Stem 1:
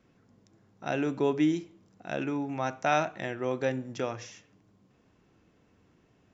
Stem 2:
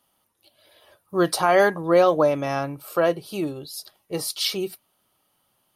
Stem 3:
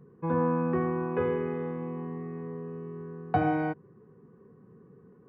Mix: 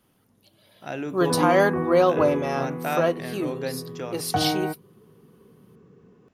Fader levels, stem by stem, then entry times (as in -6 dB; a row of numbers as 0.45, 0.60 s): -2.0, -2.0, +1.5 dB; 0.00, 0.00, 1.00 s